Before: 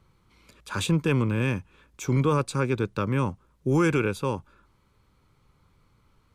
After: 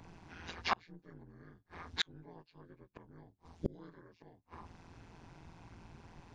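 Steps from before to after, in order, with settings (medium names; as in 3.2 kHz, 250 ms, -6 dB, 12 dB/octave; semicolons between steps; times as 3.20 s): frequency axis rescaled in octaves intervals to 82%; AM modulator 170 Hz, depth 80%; inverted gate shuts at -32 dBFS, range -41 dB; trim +14.5 dB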